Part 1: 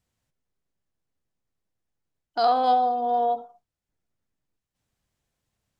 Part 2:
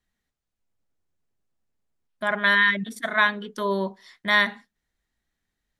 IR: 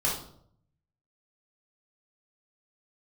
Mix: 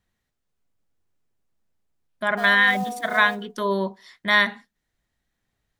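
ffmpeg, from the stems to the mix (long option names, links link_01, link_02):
-filter_complex "[0:a]tremolo=f=1.8:d=0.44,lowpass=2800,acrusher=bits=4:mode=log:mix=0:aa=0.000001,volume=0.5dB[link_01];[1:a]volume=1.5dB,asplit=2[link_02][link_03];[link_03]apad=whole_len=255615[link_04];[link_01][link_04]sidechaincompress=threshold=-21dB:ratio=8:attack=16:release=1310[link_05];[link_05][link_02]amix=inputs=2:normalize=0"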